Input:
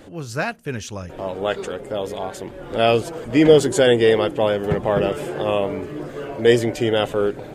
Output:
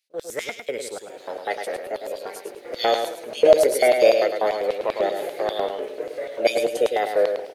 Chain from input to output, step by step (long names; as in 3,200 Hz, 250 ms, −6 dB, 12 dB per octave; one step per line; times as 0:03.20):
noise gate with hold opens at −30 dBFS
formants moved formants +5 semitones
graphic EQ with 10 bands 1,000 Hz −10 dB, 2,000 Hz +4 dB, 4,000 Hz −8 dB
auto-filter high-pass square 5.1 Hz 460–3,900 Hz
repeating echo 105 ms, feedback 25%, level −6.5 dB
level −2 dB